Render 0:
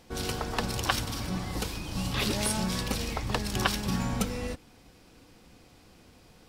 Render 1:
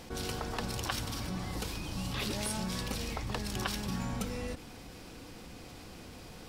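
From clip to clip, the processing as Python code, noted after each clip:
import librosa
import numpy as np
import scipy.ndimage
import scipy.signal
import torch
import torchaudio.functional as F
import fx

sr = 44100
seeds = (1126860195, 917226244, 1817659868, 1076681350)

y = fx.env_flatten(x, sr, amount_pct=50)
y = y * 10.0 ** (-9.0 / 20.0)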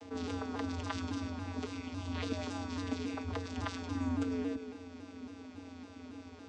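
y = fx.vocoder(x, sr, bands=16, carrier='square', carrier_hz=88.8)
y = fx.echo_split(y, sr, split_hz=470.0, low_ms=160, high_ms=106, feedback_pct=52, wet_db=-13)
y = fx.vibrato_shape(y, sr, shape='saw_down', rate_hz=3.6, depth_cents=100.0)
y = y * 10.0 ** (1.0 / 20.0)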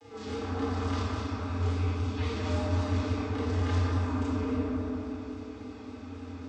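y = fx.chorus_voices(x, sr, voices=2, hz=1.0, base_ms=30, depth_ms=3.0, mix_pct=55)
y = fx.echo_bbd(y, sr, ms=192, stages=2048, feedback_pct=69, wet_db=-3.0)
y = fx.room_shoebox(y, sr, seeds[0], volume_m3=1700.0, walls='mixed', distance_m=4.0)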